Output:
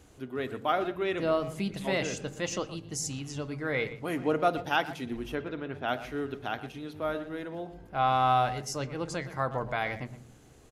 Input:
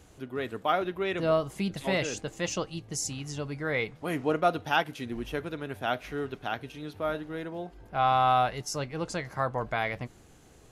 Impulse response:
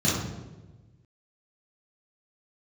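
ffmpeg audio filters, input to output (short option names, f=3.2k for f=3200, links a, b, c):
-filter_complex "[0:a]asplit=3[a][b][c];[a]afade=t=out:st=5.34:d=0.02[d];[b]lowpass=3.9k,afade=t=in:st=5.34:d=0.02,afade=t=out:st=5.87:d=0.02[e];[c]afade=t=in:st=5.87:d=0.02[f];[d][e][f]amix=inputs=3:normalize=0,asplit=2[g][h];[h]adelay=120,highpass=300,lowpass=3.4k,asoftclip=type=hard:threshold=-20.5dB,volume=-13dB[i];[g][i]amix=inputs=2:normalize=0,asplit=2[j][k];[1:a]atrim=start_sample=2205,asetrate=57330,aresample=44100[l];[k][l]afir=irnorm=-1:irlink=0,volume=-30dB[m];[j][m]amix=inputs=2:normalize=0,volume=-1.5dB"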